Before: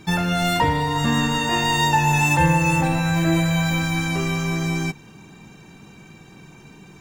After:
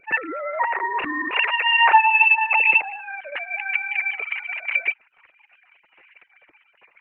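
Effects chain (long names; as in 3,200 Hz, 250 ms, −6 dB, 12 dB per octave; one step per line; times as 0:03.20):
three sine waves on the formant tracks
level −1 dB
Opus 8 kbit/s 48,000 Hz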